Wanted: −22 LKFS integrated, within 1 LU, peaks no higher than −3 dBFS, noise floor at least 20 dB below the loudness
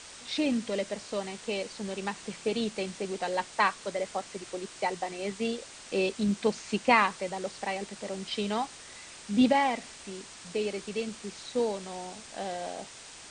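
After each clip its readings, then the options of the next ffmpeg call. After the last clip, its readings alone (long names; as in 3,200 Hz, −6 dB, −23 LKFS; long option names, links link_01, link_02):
background noise floor −48 dBFS; target noise floor −51 dBFS; integrated loudness −31.0 LKFS; sample peak −9.0 dBFS; target loudness −22.0 LKFS
→ -af "afftdn=noise_reduction=6:noise_floor=-48"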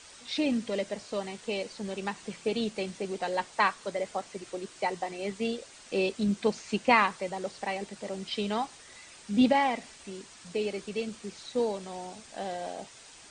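background noise floor −52 dBFS; integrated loudness −31.5 LKFS; sample peak −9.0 dBFS; target loudness −22.0 LKFS
→ -af "volume=9.5dB,alimiter=limit=-3dB:level=0:latency=1"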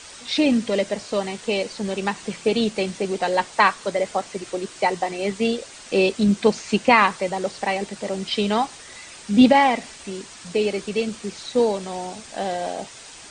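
integrated loudness −22.0 LKFS; sample peak −3.0 dBFS; background noise floor −42 dBFS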